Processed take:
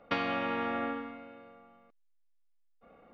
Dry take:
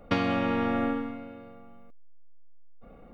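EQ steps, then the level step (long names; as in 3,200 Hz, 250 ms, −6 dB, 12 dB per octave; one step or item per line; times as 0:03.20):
high-frequency loss of the air 200 metres
spectral tilt +4.5 dB per octave
high-shelf EQ 2,200 Hz −8.5 dB
0.0 dB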